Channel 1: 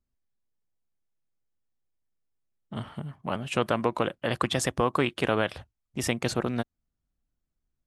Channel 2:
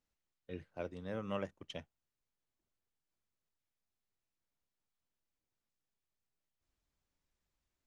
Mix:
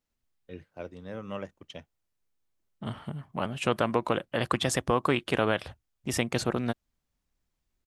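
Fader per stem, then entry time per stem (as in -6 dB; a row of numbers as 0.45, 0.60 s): -0.5, +2.0 dB; 0.10, 0.00 s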